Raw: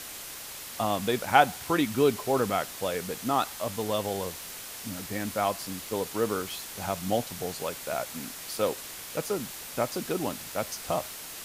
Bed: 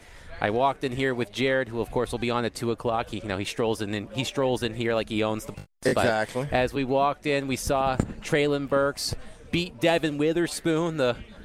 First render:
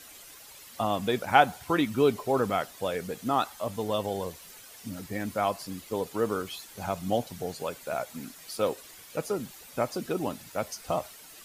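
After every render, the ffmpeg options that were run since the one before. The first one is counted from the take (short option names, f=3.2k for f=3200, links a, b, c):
-af "afftdn=nr=11:nf=-41"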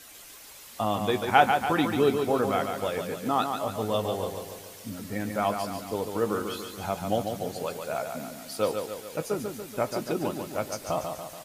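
-filter_complex "[0:a]asplit=2[a][b];[b]adelay=19,volume=-12.5dB[c];[a][c]amix=inputs=2:normalize=0,asplit=2[d][e];[e]aecho=0:1:143|286|429|572|715|858|1001:0.501|0.271|0.146|0.0789|0.0426|0.023|0.0124[f];[d][f]amix=inputs=2:normalize=0"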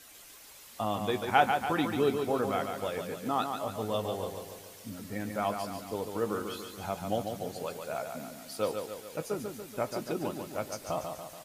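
-af "volume=-4.5dB"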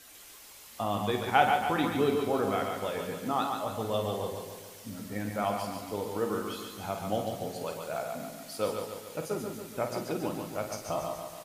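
-filter_complex "[0:a]asplit=2[a][b];[b]adelay=49,volume=-8dB[c];[a][c]amix=inputs=2:normalize=0,aecho=1:1:125:0.355"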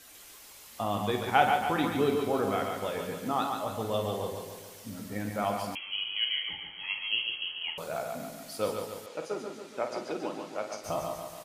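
-filter_complex "[0:a]asettb=1/sr,asplit=3[a][b][c];[a]atrim=end=5.754[d];[b]atrim=start=5.75:end=7.78,asetpts=PTS-STARTPTS,afade=t=in:d=0.004:c=qsin,afade=t=out:st=2.026:d=0.004:c=qsin,lowpass=f=2.9k:t=q:w=0.5098,lowpass=f=2.9k:t=q:w=0.6013,lowpass=f=2.9k:t=q:w=0.9,lowpass=f=2.9k:t=q:w=2.563,afreqshift=-3400[e];[c]atrim=start=7.776[f];[d][e]acrossfade=d=0.004:c1=hsin:c2=qsin[g];[g][f]acrossfade=d=0.004:c1=qsin:c2=hsin,asettb=1/sr,asplit=3[h][i][j];[h]atrim=end=9.064[k];[i]atrim=start=9.06:end=10.84,asetpts=PTS-STARTPTS,afade=t=in:d=0.004:c=qsin,afade=t=out:st=1.776:d=0.004:c=qsin,highpass=300,lowpass=6k[l];[j]atrim=start=10.836[m];[k][l]acrossfade=d=0.004:c1=hsin:c2=qsin[n];[n][m]acrossfade=d=0.004:c1=qsin:c2=hsin"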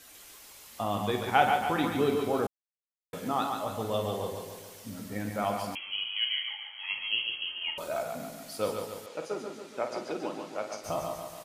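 -filter_complex "[0:a]asettb=1/sr,asplit=3[a][b][c];[a]atrim=end=6.074[d];[b]atrim=start=6.07:end=6.9,asetpts=PTS-STARTPTS,afade=t=in:d=0.004:c=qsin,afade=t=out:st=0.826:d=0.004:c=qsin,highpass=f=680:w=0.5412,highpass=f=680:w=1.3066[e];[c]atrim=start=6.896[f];[d][e]acrossfade=d=0.004:c1=hsin:c2=qsin[g];[g][f]acrossfade=d=0.004:c1=qsin:c2=hsin,asettb=1/sr,asplit=3[h][i][j];[h]atrim=end=7.474[k];[i]atrim=start=7.47:end=8.03,asetpts=PTS-STARTPTS,afade=t=in:d=0.004:c=qsin,afade=t=out:st=0.556:d=0.004:c=qsin,aecho=1:1:3.2:0.55,atrim=end_sample=24696[l];[j]atrim=start=8.026[m];[k][l]acrossfade=d=0.004:c1=hsin:c2=qsin[n];[n][m]acrossfade=d=0.004:c1=qsin:c2=hsin,asplit=3[o][p][q];[o]atrim=end=2.47,asetpts=PTS-STARTPTS,afade=t=out:st=2.466:d=0.004:c=hsin[r];[p]atrim=start=2.47:end=3.13,asetpts=PTS-STARTPTS,volume=0[s];[q]atrim=start=3.13,asetpts=PTS-STARTPTS,afade=t=in:d=0.004:c=hsin[t];[r][s][t]concat=n=3:v=0:a=1"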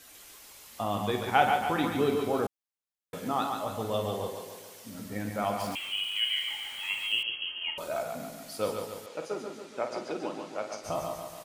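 -filter_complex "[0:a]asettb=1/sr,asplit=3[a][b][c];[a]atrim=end=4.284[d];[b]atrim=start=4.28:end=4.95,asetpts=PTS-STARTPTS,afade=t=in:d=0.004:c=qsin,afade=t=out:st=0.666:d=0.004:c=qsin,highpass=f=240:p=1[e];[c]atrim=start=4.946[f];[d][e]acrossfade=d=0.004:c1=hsin:c2=qsin[g];[g][f]acrossfade=d=0.004:c1=qsin:c2=hsin,asettb=1/sr,asplit=3[h][i][j];[h]atrim=end=5.604[k];[i]atrim=start=5.6:end=7.23,asetpts=PTS-STARTPTS,afade=t=in:d=0.004:c=qsin,afade=t=out:st=1.626:d=0.004:c=qsin,aeval=exprs='val(0)+0.5*0.0106*sgn(val(0))':c=same[l];[j]atrim=start=7.226[m];[k][l]acrossfade=d=0.004:c1=hsin:c2=qsin[n];[n][m]acrossfade=d=0.004:c1=qsin:c2=hsin,asettb=1/sr,asplit=3[o][p][q];[o]atrim=end=9.654[r];[p]atrim=start=9.65:end=10.95,asetpts=PTS-STARTPTS,afade=t=in:d=0.004:c=qsin,afade=t=out:st=1.296:d=0.004:c=qsin,lowpass=11k[s];[q]atrim=start=10.946[t];[r][s]acrossfade=d=0.004:c1=hsin:c2=qsin[u];[u][t]acrossfade=d=0.004:c1=qsin:c2=hsin"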